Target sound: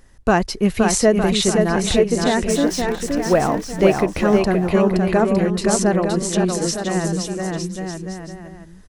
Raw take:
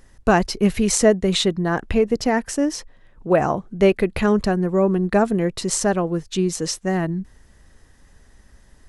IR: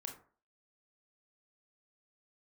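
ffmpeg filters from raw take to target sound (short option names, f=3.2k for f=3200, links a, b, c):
-filter_complex "[0:a]asettb=1/sr,asplit=3[a][b][c];[a]atrim=end=2.504[d];[b]atrim=start=2.5:end=3.49,asetpts=PTS-STARTPTS,afade=t=in:d=0.004:c=qsin,afade=t=out:st=0.986:d=0.004:c=qsin,aeval=exprs='val(0)+0.5*0.0316*sgn(val(0))':c=same[e];[c]atrim=start=3.486[f];[d][e]acrossfade=d=0.004:c1=hsin:c2=qsin[g];[g][f]acrossfade=d=0.004:c1=qsin:c2=hsin,asplit=2[h][i];[i]aecho=0:1:520|910|1202|1422|1586:0.631|0.398|0.251|0.158|0.1[j];[h][j]amix=inputs=2:normalize=0"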